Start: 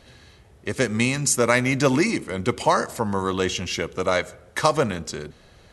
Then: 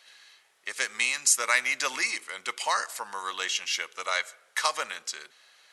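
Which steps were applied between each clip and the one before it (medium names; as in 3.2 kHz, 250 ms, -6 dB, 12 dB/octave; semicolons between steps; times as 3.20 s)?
high-pass 1.4 kHz 12 dB/octave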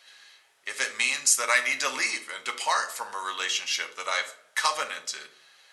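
reverberation RT60 0.55 s, pre-delay 7 ms, DRR 4 dB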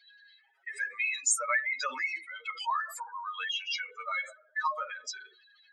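spectral contrast enhancement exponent 3.6; trim -4.5 dB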